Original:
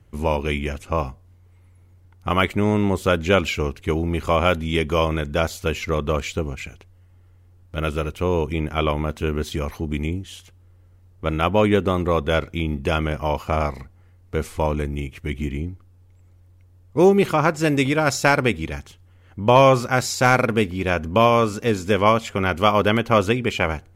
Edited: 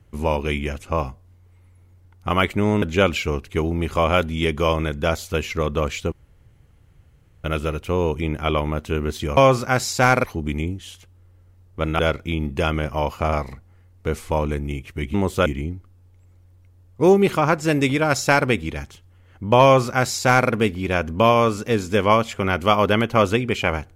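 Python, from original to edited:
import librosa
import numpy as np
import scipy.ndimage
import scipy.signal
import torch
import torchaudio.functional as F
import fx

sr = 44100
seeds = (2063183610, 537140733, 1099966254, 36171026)

y = fx.edit(x, sr, fx.move(start_s=2.82, length_s=0.32, to_s=15.42),
    fx.room_tone_fill(start_s=6.44, length_s=1.32),
    fx.cut(start_s=11.44, length_s=0.83),
    fx.duplicate(start_s=19.59, length_s=0.87, to_s=9.69), tone=tone)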